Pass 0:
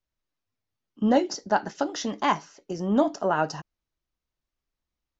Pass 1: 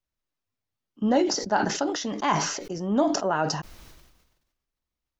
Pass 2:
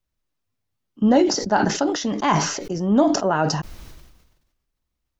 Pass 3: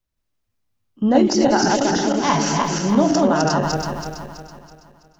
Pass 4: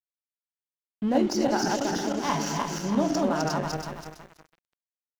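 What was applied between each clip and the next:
sustainer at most 51 dB/s; gain -1.5 dB
low shelf 280 Hz +6 dB; gain +3.5 dB
regenerating reverse delay 0.164 s, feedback 64%, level -1 dB; gain -1 dB
crossover distortion -32.5 dBFS; gain -7.5 dB

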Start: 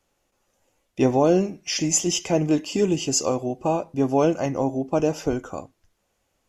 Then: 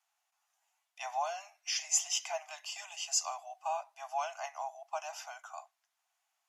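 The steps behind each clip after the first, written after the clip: steep high-pass 670 Hz 96 dB/oct; gain -7.5 dB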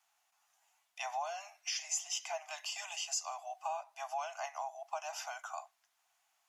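compressor 2.5:1, threshold -44 dBFS, peak gain reduction 13.5 dB; gain +5 dB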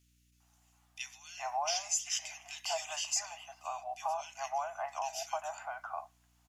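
bands offset in time highs, lows 0.4 s, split 2100 Hz; hum 60 Hz, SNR 31 dB; gain +3.5 dB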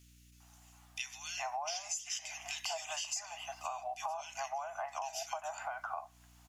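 compressor 5:1, threshold -46 dBFS, peak gain reduction 16.5 dB; gain +8.5 dB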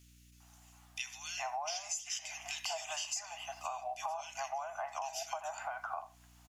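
speakerphone echo 80 ms, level -16 dB

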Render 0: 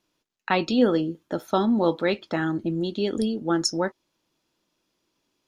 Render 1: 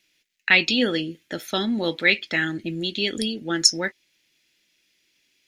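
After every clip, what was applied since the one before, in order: resonant high shelf 1500 Hz +11 dB, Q 3; gain -2.5 dB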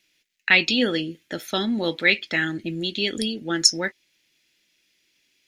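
nothing audible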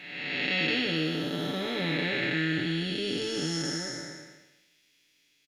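time blur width 0.65 s; comb 6.9 ms, depth 73%

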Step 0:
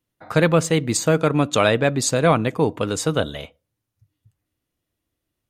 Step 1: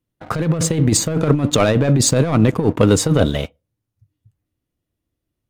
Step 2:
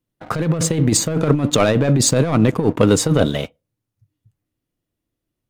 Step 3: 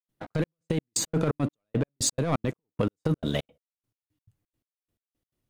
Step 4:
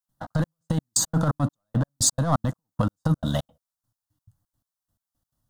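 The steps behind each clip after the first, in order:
sample leveller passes 2; low shelf 490 Hz +9 dB; negative-ratio compressor -9 dBFS, ratio -0.5; gain -4.5 dB
bell 71 Hz -9.5 dB 0.7 oct
limiter -7.5 dBFS, peak gain reduction 6 dB; compressor, threshold -20 dBFS, peak gain reduction 8.5 dB; step gate ".xx.x...x..x" 172 bpm -60 dB; gain -1.5 dB
fixed phaser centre 980 Hz, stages 4; gain +7 dB

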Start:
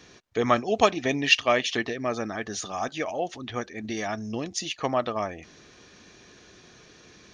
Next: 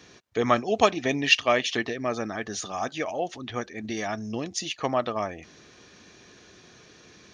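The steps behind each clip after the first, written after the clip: HPF 53 Hz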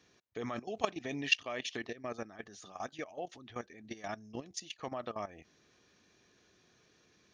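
level quantiser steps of 15 dB; gain -8 dB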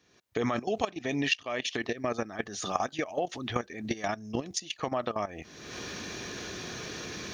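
recorder AGC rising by 41 dB/s; gain -1.5 dB

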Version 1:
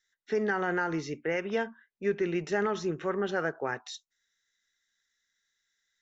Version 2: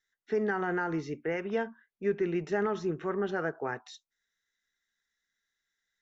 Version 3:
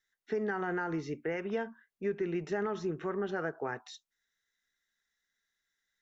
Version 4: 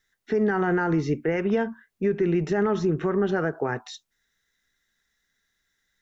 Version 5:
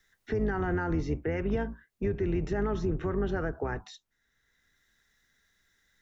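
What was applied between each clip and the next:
high shelf 2300 Hz -9 dB; notch 550 Hz, Q 12
compressor 2:1, threshold -32 dBFS, peak gain reduction 5 dB
low shelf 280 Hz +9 dB; limiter -23.5 dBFS, peak gain reduction 4.5 dB; gain +8.5 dB
octaver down 2 oct, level 0 dB; three-band squash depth 40%; gain -7.5 dB

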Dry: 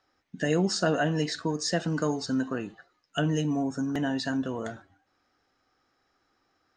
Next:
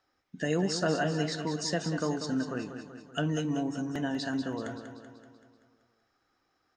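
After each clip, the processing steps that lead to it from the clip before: feedback echo 0.191 s, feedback 56%, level -9 dB; gain -3.5 dB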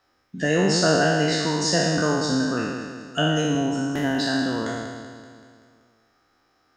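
spectral trails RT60 1.56 s; gain +6 dB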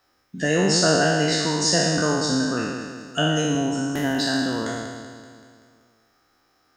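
high shelf 7600 Hz +10 dB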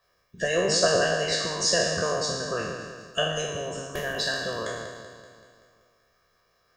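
harmonic-percussive split harmonic -15 dB; reverb RT60 0.70 s, pre-delay 4 ms, DRR 17 dB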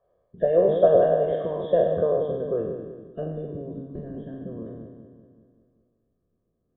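nonlinear frequency compression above 2900 Hz 4:1; low-pass sweep 590 Hz -> 270 Hz, 1.8–3.89

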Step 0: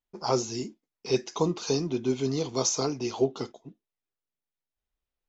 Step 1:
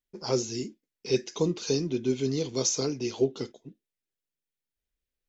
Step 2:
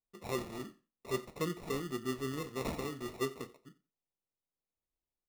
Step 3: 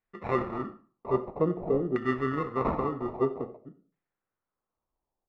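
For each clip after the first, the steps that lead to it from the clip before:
band shelf 930 Hz -9 dB 1.2 oct
sample-and-hold 28×; flange 0.5 Hz, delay 7.9 ms, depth 8.2 ms, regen -71%; feedback echo 89 ms, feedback 16%, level -20.5 dB; gain -5.5 dB
LFO low-pass saw down 0.51 Hz 540–1900 Hz; on a send at -16 dB: reverb RT60 0.40 s, pre-delay 63 ms; on the sum: gain +7.5 dB

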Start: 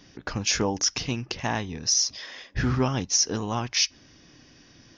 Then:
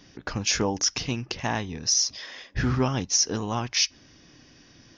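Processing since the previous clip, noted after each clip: nothing audible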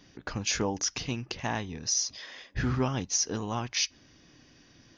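notch 5400 Hz, Q 13; gain -4 dB

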